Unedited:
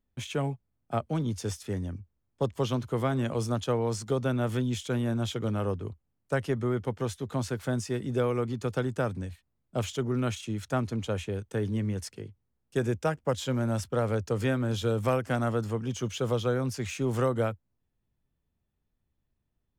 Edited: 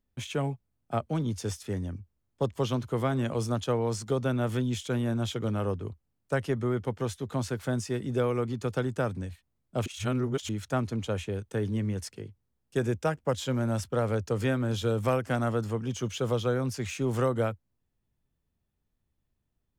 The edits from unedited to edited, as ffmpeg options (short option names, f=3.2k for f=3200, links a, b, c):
-filter_complex "[0:a]asplit=3[a][b][c];[a]atrim=end=9.862[d];[b]atrim=start=9.858:end=10.492,asetpts=PTS-STARTPTS,areverse[e];[c]atrim=start=10.488[f];[d][e]acrossfade=d=0.004:c1=hsin:c2=hsin[g];[g][f]acrossfade=d=0.004:c1=hsin:c2=hsin"